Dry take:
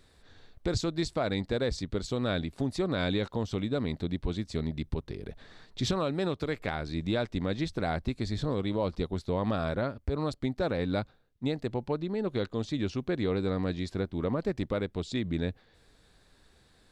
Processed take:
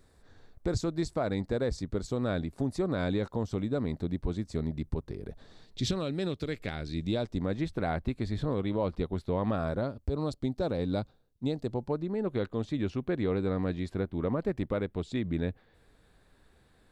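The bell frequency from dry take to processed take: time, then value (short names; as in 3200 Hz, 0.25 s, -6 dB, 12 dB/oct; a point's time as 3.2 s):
bell -9.5 dB 1.5 oct
5.24 s 3200 Hz
5.87 s 960 Hz
6.96 s 960 Hz
7.72 s 5800 Hz
9.45 s 5800 Hz
9.86 s 1900 Hz
11.59 s 1900 Hz
12.4 s 5300 Hz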